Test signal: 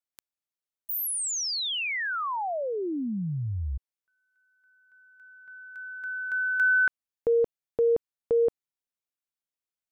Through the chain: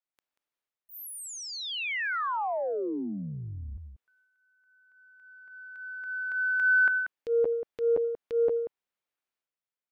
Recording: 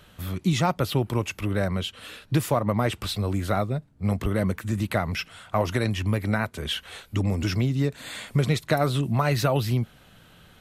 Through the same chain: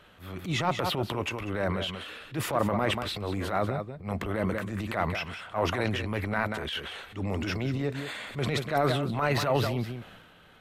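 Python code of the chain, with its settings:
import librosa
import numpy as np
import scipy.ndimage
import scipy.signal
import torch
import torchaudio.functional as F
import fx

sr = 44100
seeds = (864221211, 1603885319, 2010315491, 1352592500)

y = fx.bass_treble(x, sr, bass_db=-8, treble_db=-11)
y = y + 10.0 ** (-12.0 / 20.0) * np.pad(y, (int(186 * sr / 1000.0), 0))[:len(y)]
y = fx.transient(y, sr, attack_db=-11, sustain_db=7)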